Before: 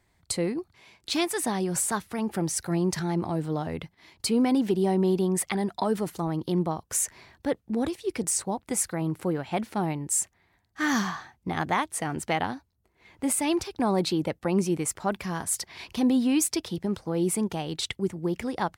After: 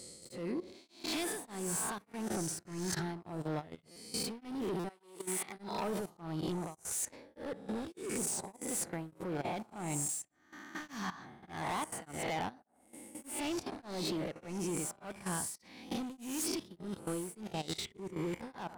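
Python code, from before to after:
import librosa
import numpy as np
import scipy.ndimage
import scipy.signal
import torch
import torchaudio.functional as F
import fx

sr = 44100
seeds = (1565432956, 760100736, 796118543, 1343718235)

y = fx.spec_swells(x, sr, rise_s=0.85)
y = fx.echo_tape(y, sr, ms=61, feedback_pct=76, wet_db=-16, lp_hz=2100.0, drive_db=3.0, wow_cents=32)
y = np.clip(y, -10.0 ** (-23.0 / 20.0), 10.0 ** (-23.0 / 20.0))
y = fx.highpass(y, sr, hz=fx.line((4.88, 770.0), (5.56, 190.0)), slope=12, at=(4.88, 5.56), fade=0.02)
y = fx.level_steps(y, sr, step_db=15)
y = fx.buffer_glitch(y, sr, at_s=(3.91, 4.79), block=256, repeats=8)
y = y * np.abs(np.cos(np.pi * 1.7 * np.arange(len(y)) / sr))
y = y * 10.0 ** (-5.0 / 20.0)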